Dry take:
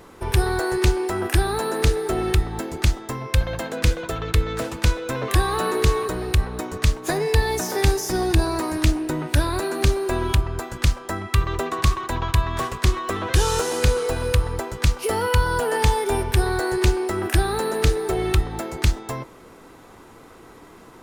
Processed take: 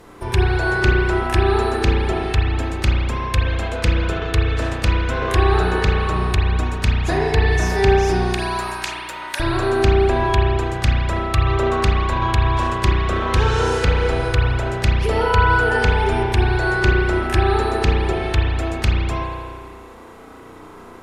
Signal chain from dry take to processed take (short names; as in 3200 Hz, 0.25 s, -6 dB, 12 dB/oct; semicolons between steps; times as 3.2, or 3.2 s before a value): 8.24–9.4 HPF 890 Hz 12 dB/oct; treble ducked by the level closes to 2900 Hz, closed at -14 dBFS; spring tank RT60 1.8 s, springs 33 ms, chirp 50 ms, DRR -3 dB